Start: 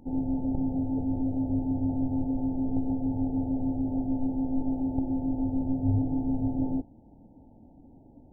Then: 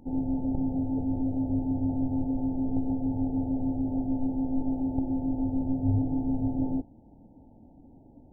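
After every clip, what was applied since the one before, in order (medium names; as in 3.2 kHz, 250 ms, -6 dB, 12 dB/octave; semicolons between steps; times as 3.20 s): no audible change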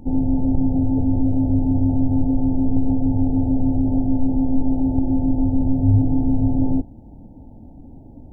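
bass shelf 150 Hz +9.5 dB; in parallel at +2.5 dB: peak limiter -18.5 dBFS, peak gain reduction 9.5 dB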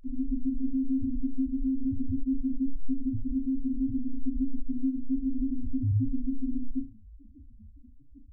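overload inside the chain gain 16 dB; loudest bins only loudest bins 1; flutter echo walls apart 6.3 m, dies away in 0.27 s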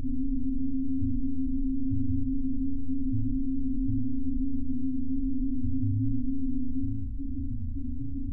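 spectral levelling over time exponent 0.2; trim -5 dB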